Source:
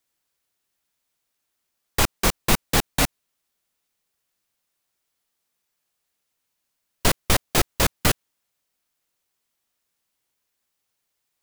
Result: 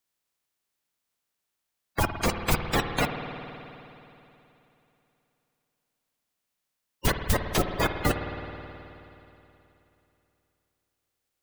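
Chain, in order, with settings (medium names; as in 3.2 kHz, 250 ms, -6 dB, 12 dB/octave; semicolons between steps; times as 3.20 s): coarse spectral quantiser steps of 30 dB; spring tank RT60 3.1 s, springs 53 ms, chirp 30 ms, DRR 6 dB; trim -4.5 dB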